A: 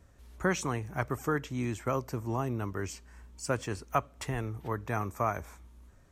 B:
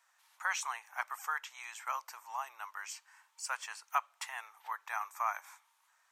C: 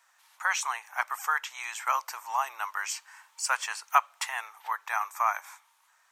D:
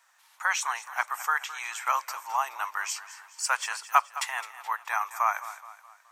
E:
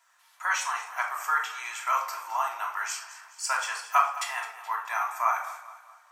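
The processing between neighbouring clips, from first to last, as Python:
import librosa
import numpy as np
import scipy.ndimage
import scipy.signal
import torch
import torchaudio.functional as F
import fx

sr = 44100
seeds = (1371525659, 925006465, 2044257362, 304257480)

y1 = scipy.signal.sosfilt(scipy.signal.ellip(4, 1.0, 80, 850.0, 'highpass', fs=sr, output='sos'), x)
y2 = fx.rider(y1, sr, range_db=3, speed_s=2.0)
y2 = F.gain(torch.from_numpy(y2), 8.5).numpy()
y3 = fx.echo_feedback(y2, sr, ms=212, feedback_pct=46, wet_db=-15)
y3 = F.gain(torch.from_numpy(y3), 1.0).numpy()
y4 = fx.room_shoebox(y3, sr, seeds[0], volume_m3=960.0, walls='furnished', distance_m=3.0)
y4 = F.gain(torch.from_numpy(y4), -4.0).numpy()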